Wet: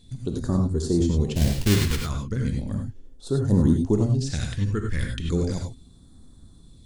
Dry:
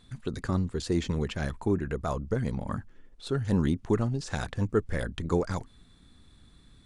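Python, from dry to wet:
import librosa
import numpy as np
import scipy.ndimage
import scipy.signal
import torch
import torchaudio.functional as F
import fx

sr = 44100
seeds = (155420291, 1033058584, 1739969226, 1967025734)

y = fx.halfwave_hold(x, sr, at=(1.35, 2.01))
y = fx.phaser_stages(y, sr, stages=2, low_hz=640.0, high_hz=2300.0, hz=0.36, feedback_pct=30)
y = fx.rev_gated(y, sr, seeds[0], gate_ms=120, shape='rising', drr_db=2.0)
y = F.gain(torch.from_numpy(y), 4.0).numpy()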